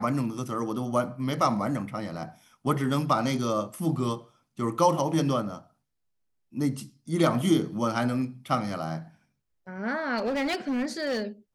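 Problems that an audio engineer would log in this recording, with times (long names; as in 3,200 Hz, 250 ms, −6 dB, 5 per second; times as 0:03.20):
0:10.17–0:11.23: clipping −24.5 dBFS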